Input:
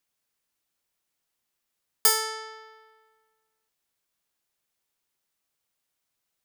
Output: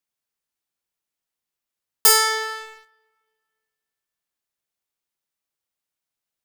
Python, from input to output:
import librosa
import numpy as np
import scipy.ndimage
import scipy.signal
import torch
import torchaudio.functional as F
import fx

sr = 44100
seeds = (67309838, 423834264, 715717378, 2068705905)

y = fx.rev_spring(x, sr, rt60_s=2.2, pass_ms=(32, 55), chirp_ms=70, drr_db=11.5)
y = fx.leveller(y, sr, passes=3)